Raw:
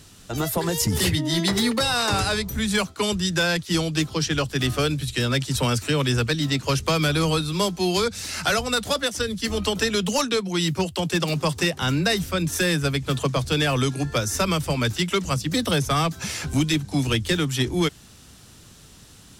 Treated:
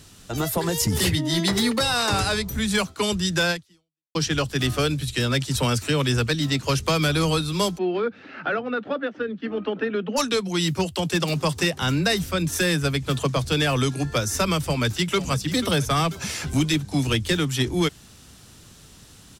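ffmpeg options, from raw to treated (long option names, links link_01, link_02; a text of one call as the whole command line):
ffmpeg -i in.wav -filter_complex "[0:a]asplit=3[link_01][link_02][link_03];[link_01]afade=type=out:start_time=7.77:duration=0.02[link_04];[link_02]highpass=frequency=170:width=0.5412,highpass=frequency=170:width=1.3066,equalizer=frequency=180:width_type=q:width=4:gain=-7,equalizer=frequency=280:width_type=q:width=4:gain=4,equalizer=frequency=690:width_type=q:width=4:gain=-3,equalizer=frequency=1000:width_type=q:width=4:gain=-8,equalizer=frequency=2100:width_type=q:width=4:gain=-7,lowpass=frequency=2200:width=0.5412,lowpass=frequency=2200:width=1.3066,afade=type=in:start_time=7.77:duration=0.02,afade=type=out:start_time=10.16:duration=0.02[link_05];[link_03]afade=type=in:start_time=10.16:duration=0.02[link_06];[link_04][link_05][link_06]amix=inputs=3:normalize=0,asplit=2[link_07][link_08];[link_08]afade=type=in:start_time=14.58:duration=0.01,afade=type=out:start_time=15.19:duration=0.01,aecho=0:1:490|980|1470|1960|2450:0.211349|0.105674|0.0528372|0.0264186|0.0132093[link_09];[link_07][link_09]amix=inputs=2:normalize=0,asplit=2[link_10][link_11];[link_10]atrim=end=4.15,asetpts=PTS-STARTPTS,afade=type=out:start_time=3.51:duration=0.64:curve=exp[link_12];[link_11]atrim=start=4.15,asetpts=PTS-STARTPTS,afade=type=in:duration=0.004:curve=hsin[link_13];[link_12][link_13]concat=n=2:v=0:a=1" out.wav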